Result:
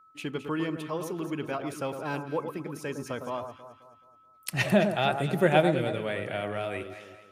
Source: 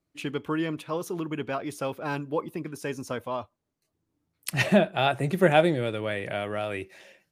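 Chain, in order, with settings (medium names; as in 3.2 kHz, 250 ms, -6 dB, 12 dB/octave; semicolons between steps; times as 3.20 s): whistle 1.3 kHz -53 dBFS; on a send: echo whose repeats swap between lows and highs 107 ms, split 1.4 kHz, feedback 64%, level -7 dB; on the sum: trim -2.5 dB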